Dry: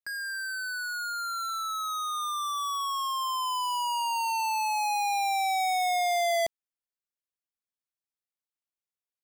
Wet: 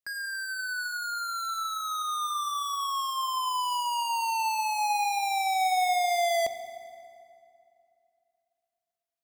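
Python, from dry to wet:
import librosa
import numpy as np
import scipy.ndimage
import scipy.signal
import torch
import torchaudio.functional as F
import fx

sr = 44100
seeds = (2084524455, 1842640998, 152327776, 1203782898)

y = fx.rev_fdn(x, sr, rt60_s=2.7, lf_ratio=1.0, hf_ratio=0.65, size_ms=24.0, drr_db=10.0)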